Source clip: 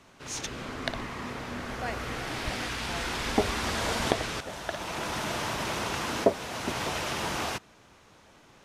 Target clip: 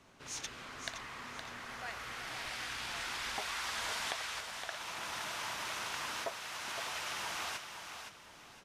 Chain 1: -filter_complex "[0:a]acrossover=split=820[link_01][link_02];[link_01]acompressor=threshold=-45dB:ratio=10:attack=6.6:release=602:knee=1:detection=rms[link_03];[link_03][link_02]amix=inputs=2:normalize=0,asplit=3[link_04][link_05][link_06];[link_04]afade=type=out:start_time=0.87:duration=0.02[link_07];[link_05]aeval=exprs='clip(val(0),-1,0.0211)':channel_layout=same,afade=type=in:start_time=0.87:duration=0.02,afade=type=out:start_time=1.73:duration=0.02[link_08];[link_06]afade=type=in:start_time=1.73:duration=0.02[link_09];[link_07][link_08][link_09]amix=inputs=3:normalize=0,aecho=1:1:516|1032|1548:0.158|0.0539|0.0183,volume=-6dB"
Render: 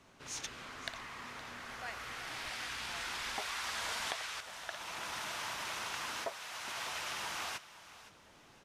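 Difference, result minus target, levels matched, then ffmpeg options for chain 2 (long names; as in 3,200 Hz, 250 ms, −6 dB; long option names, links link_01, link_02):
echo-to-direct −8.5 dB
-filter_complex "[0:a]acrossover=split=820[link_01][link_02];[link_01]acompressor=threshold=-45dB:ratio=10:attack=6.6:release=602:knee=1:detection=rms[link_03];[link_03][link_02]amix=inputs=2:normalize=0,asplit=3[link_04][link_05][link_06];[link_04]afade=type=out:start_time=0.87:duration=0.02[link_07];[link_05]aeval=exprs='clip(val(0),-1,0.0211)':channel_layout=same,afade=type=in:start_time=0.87:duration=0.02,afade=type=out:start_time=1.73:duration=0.02[link_08];[link_06]afade=type=in:start_time=1.73:duration=0.02[link_09];[link_07][link_08][link_09]amix=inputs=3:normalize=0,aecho=1:1:516|1032|1548|2064:0.422|0.143|0.0487|0.0166,volume=-6dB"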